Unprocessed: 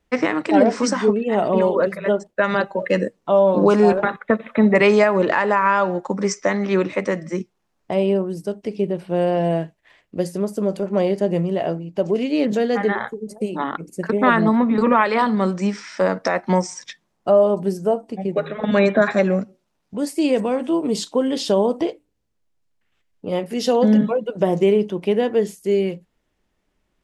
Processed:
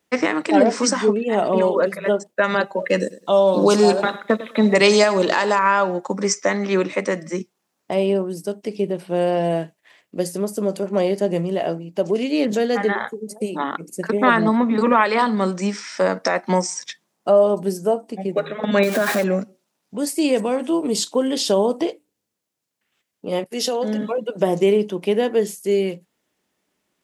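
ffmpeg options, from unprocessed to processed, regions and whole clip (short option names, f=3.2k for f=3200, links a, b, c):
-filter_complex "[0:a]asettb=1/sr,asplit=3[a][b][c];[a]atrim=end=3.004[d];[b]atrim=start=3:end=5.59,asetpts=PTS-STARTPTS,afade=t=in:d=0.004:c=qsin,afade=t=out:st=2.586:d=0.004:c=qsin,highshelf=f=2.9k:t=q:w=1.5:g=8,aecho=1:1:104|208:0.15|0.0314,atrim=end_sample=114219[e];[c]atrim=start=5.586[f];[d][e]acrossfade=d=0.004:c1=hsin:c2=qsin[g];[g][f]acrossfade=d=0.004:c1=qsin:c2=hsin,asettb=1/sr,asplit=3[h][i][j];[h]atrim=end=18.834[k];[i]atrim=start=18.83:end=19.24,asetpts=PTS-STARTPTS,afade=t=in:d=0.004:c=qsin,afade=t=out:st=0.406:d=0.004:c=qsin,aeval=exprs='val(0)+0.5*0.0708*sgn(val(0))':c=same,acompressor=threshold=-16dB:ratio=3:attack=3.2:release=140:knee=1:detection=peak[l];[j]atrim=start=19.236[m];[k][l]acrossfade=d=0.004:c1=hsin:c2=qsin[n];[n][m]acrossfade=d=0.004:c1=qsin:c2=hsin,asettb=1/sr,asplit=3[o][p][q];[o]atrim=end=23.444[r];[p]atrim=start=23.44:end=24.18,asetpts=PTS-STARTPTS,afade=t=in:d=0.004:c=qsin,afade=t=out:st=0.736:d=0.004:c=qsin,agate=range=-33dB:threshold=-27dB:ratio=3:release=100:detection=peak,highpass=260,acompressor=threshold=-18dB:ratio=6:attack=3.2:release=140:knee=1:detection=peak[s];[q]atrim=start=24.176[t];[r][s]acrossfade=d=0.004:c1=hsin:c2=qsin[u];[u][t]acrossfade=d=0.004:c1=qsin:c2=hsin,highpass=170,highshelf=f=5.2k:g=10"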